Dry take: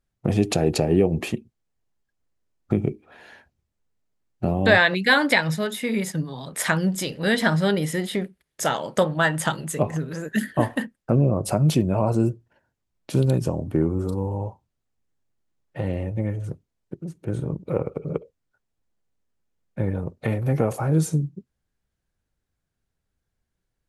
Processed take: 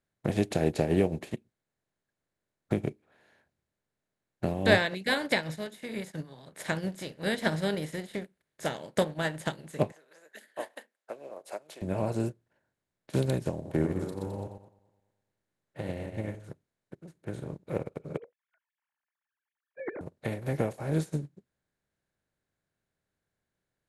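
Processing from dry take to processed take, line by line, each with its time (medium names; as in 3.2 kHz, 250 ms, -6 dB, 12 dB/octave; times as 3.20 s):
9.92–11.82 s: high-pass 530 Hz 24 dB/octave
13.52–16.35 s: backward echo that repeats 106 ms, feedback 44%, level -5.5 dB
18.17–20.01 s: formants replaced by sine waves
whole clip: spectral levelling over time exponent 0.6; dynamic bell 1.3 kHz, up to -6 dB, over -33 dBFS, Q 1.4; upward expansion 2.5:1, over -31 dBFS; trim -4.5 dB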